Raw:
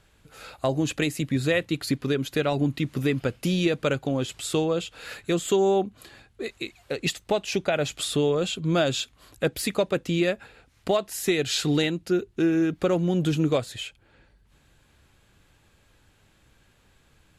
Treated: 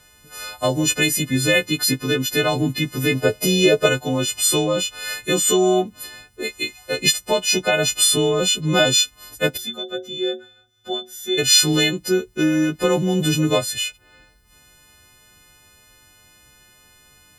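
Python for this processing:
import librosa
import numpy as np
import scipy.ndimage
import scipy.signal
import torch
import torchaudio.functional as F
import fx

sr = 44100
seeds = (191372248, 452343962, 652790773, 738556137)

y = fx.freq_snap(x, sr, grid_st=3)
y = fx.small_body(y, sr, hz=(430.0, 630.0), ring_ms=45, db=12, at=(3.15, 3.86))
y = fx.stiff_resonator(y, sr, f0_hz=110.0, decay_s=0.41, stiffness=0.03, at=(9.56, 11.37), fade=0.02)
y = F.gain(torch.from_numpy(y), 4.5).numpy()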